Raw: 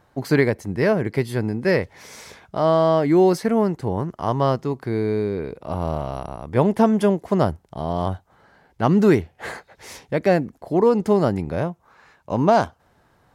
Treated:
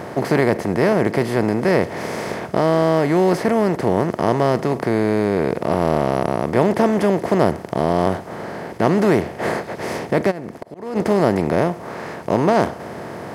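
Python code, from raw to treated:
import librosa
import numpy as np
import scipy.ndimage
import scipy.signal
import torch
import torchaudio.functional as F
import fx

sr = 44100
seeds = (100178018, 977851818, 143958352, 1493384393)

y = fx.bin_compress(x, sr, power=0.4)
y = scipy.signal.sosfilt(scipy.signal.butter(2, 72.0, 'highpass', fs=sr, output='sos'), y)
y = fx.auto_swell(y, sr, attack_ms=535.0, at=(10.3, 10.95), fade=0.02)
y = y * 10.0 ** (-4.0 / 20.0)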